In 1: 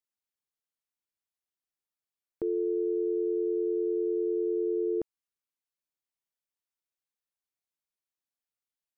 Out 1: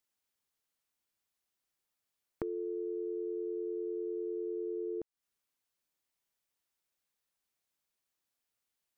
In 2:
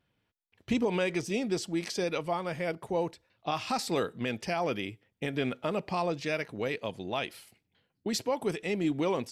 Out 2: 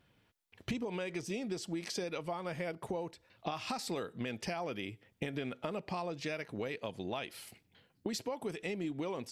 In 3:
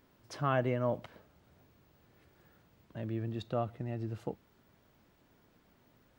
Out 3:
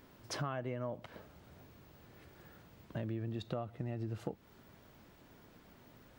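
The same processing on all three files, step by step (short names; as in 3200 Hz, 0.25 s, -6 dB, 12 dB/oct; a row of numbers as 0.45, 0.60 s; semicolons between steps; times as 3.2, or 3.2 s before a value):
compressor 8:1, threshold -42 dBFS; gain +6.5 dB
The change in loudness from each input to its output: -8.5, -7.0, -6.0 LU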